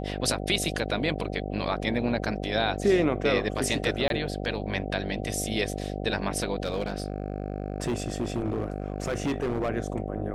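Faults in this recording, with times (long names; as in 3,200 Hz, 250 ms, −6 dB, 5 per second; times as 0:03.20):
mains buzz 50 Hz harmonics 15 −33 dBFS
0:04.08–0:04.10: drop-out 22 ms
0:06.64–0:09.70: clipping −23.5 dBFS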